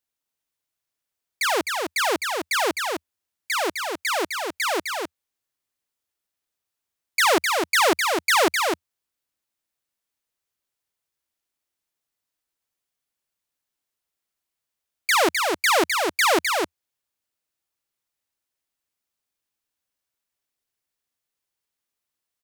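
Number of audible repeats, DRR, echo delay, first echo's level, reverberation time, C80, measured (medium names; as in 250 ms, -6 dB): 1, no reverb, 257 ms, -4.5 dB, no reverb, no reverb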